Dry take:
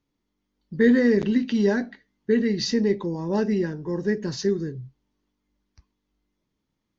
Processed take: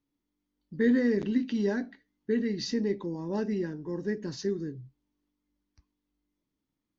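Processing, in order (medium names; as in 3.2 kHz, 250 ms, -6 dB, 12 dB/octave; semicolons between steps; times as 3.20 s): peaking EQ 290 Hz +8 dB 0.28 oct; trim -8 dB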